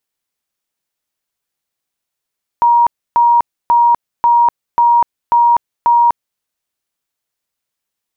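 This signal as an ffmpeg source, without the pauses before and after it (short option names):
-f lavfi -i "aevalsrc='0.473*sin(2*PI*947*mod(t,0.54))*lt(mod(t,0.54),234/947)':d=3.78:s=44100"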